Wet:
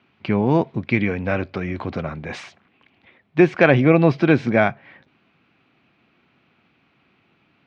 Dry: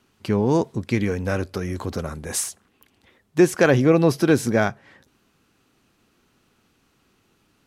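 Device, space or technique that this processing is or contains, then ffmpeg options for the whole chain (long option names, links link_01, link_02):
guitar cabinet: -af "highpass=100,equalizer=frequency=150:width_type=q:width=4:gain=3,equalizer=frequency=440:width_type=q:width=4:gain=-4,equalizer=frequency=690:width_type=q:width=4:gain=4,equalizer=frequency=2300:width_type=q:width=4:gain=8,lowpass=frequency=3600:width=0.5412,lowpass=frequency=3600:width=1.3066,volume=2dB"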